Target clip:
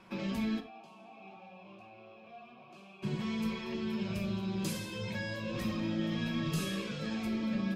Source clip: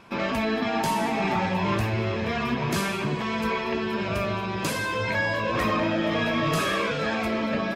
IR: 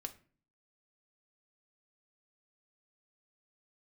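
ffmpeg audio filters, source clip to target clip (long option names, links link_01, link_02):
-filter_complex "[0:a]acrossover=split=360|3000[link_01][link_02][link_03];[link_02]acompressor=threshold=-42dB:ratio=4[link_04];[link_01][link_04][link_03]amix=inputs=3:normalize=0,asplit=3[link_05][link_06][link_07];[link_05]afade=type=out:start_time=0.59:duration=0.02[link_08];[link_06]asplit=3[link_09][link_10][link_11];[link_09]bandpass=frequency=730:width_type=q:width=8,volume=0dB[link_12];[link_10]bandpass=frequency=1090:width_type=q:width=8,volume=-6dB[link_13];[link_11]bandpass=frequency=2440:width_type=q:width=8,volume=-9dB[link_14];[link_12][link_13][link_14]amix=inputs=3:normalize=0,afade=type=in:start_time=0.59:duration=0.02,afade=type=out:start_time=3.02:duration=0.02[link_15];[link_07]afade=type=in:start_time=3.02:duration=0.02[link_16];[link_08][link_15][link_16]amix=inputs=3:normalize=0[link_17];[1:a]atrim=start_sample=2205,atrim=end_sample=3528,asetrate=30429,aresample=44100[link_18];[link_17][link_18]afir=irnorm=-1:irlink=0,volume=-6dB"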